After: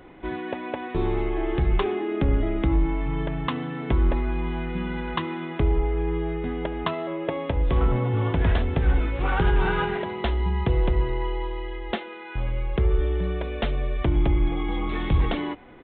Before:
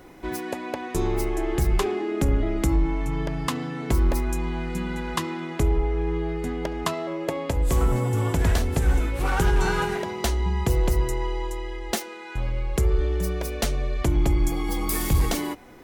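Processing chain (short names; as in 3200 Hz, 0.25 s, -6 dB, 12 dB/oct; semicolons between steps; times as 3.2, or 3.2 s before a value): downsampling 8000 Hz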